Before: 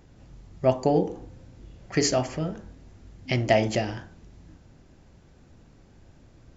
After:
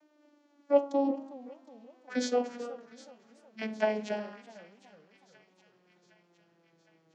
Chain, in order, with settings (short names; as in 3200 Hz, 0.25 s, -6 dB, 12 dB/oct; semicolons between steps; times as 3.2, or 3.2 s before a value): vocoder on a gliding note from E4, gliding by -11 st; speed mistake 48 kHz file played as 44.1 kHz; Bessel high-pass 510 Hz, order 2; on a send: thin delay 0.762 s, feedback 62%, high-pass 1800 Hz, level -18 dB; on the sum: warbling echo 0.373 s, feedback 45%, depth 189 cents, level -19 dB